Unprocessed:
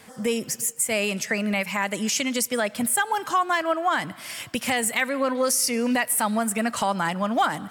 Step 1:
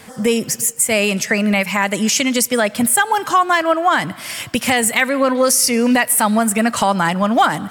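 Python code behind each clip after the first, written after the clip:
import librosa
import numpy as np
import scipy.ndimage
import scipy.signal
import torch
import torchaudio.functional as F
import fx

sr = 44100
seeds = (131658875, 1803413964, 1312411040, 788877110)

y = fx.low_shelf(x, sr, hz=150.0, db=4.0)
y = y * librosa.db_to_amplitude(8.0)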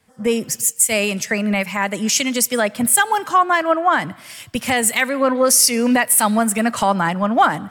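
y = fx.band_widen(x, sr, depth_pct=70)
y = y * librosa.db_to_amplitude(-1.5)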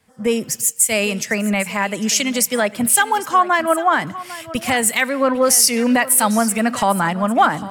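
y = x + 10.0 ** (-16.5 / 20.0) * np.pad(x, (int(801 * sr / 1000.0), 0))[:len(x)]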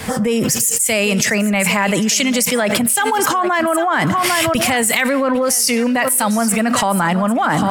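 y = fx.env_flatten(x, sr, amount_pct=100)
y = y * librosa.db_to_amplitude(-6.0)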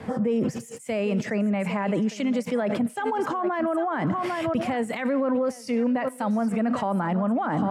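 y = fx.bandpass_q(x, sr, hz=310.0, q=0.53)
y = y * librosa.db_to_amplitude(-6.0)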